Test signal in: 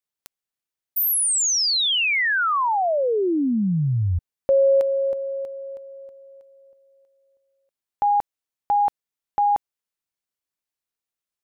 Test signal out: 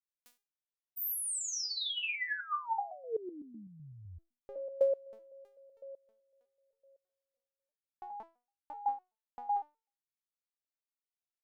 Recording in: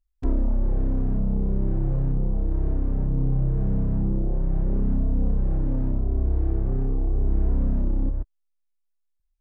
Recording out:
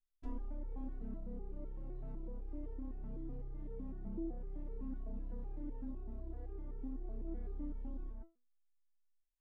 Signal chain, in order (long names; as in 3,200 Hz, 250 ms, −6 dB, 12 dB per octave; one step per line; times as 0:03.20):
step-sequenced resonator 7.9 Hz 220–450 Hz
level −1.5 dB